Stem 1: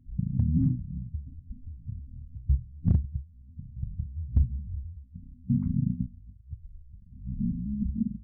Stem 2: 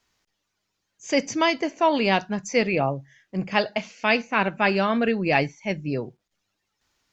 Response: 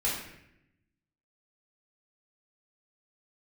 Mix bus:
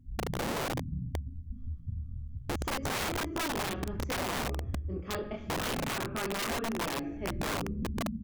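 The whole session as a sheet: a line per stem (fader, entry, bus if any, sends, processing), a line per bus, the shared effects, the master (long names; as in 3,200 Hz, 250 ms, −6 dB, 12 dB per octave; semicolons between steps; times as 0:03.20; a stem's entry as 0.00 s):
−0.5 dB, 0.00 s, send −14.5 dB, no processing
−14.5 dB, 1.55 s, send −13.5 dB, parametric band 5,300 Hz −9.5 dB 2.4 octaves; multi-voice chorus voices 2, 0.41 Hz, delay 25 ms, depth 3.4 ms; hollow resonant body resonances 330/1,200/3,300 Hz, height 18 dB, ringing for 20 ms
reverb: on, RT60 0.80 s, pre-delay 3 ms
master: wrap-around overflow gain 22.5 dB; downward compressor 5 to 1, threshold −31 dBFS, peak gain reduction 6 dB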